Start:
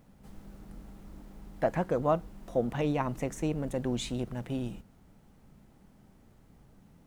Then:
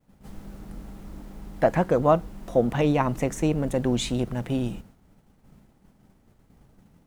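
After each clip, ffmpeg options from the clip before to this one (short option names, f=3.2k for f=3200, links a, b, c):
-af "agate=range=-33dB:threshold=-51dB:ratio=3:detection=peak,volume=7.5dB"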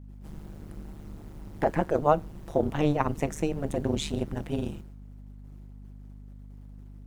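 -af "tremolo=f=150:d=1,aeval=exprs='val(0)+0.00631*(sin(2*PI*50*n/s)+sin(2*PI*2*50*n/s)/2+sin(2*PI*3*50*n/s)/3+sin(2*PI*4*50*n/s)/4+sin(2*PI*5*50*n/s)/5)':c=same"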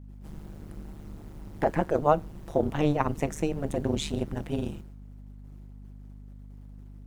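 -af anull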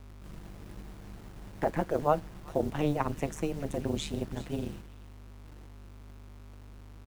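-filter_complex "[0:a]acrossover=split=530|1100[a][b][c];[a]acrusher=bits=7:mix=0:aa=0.000001[d];[c]aecho=1:1:380:0.168[e];[d][b][e]amix=inputs=3:normalize=0,volume=-4dB"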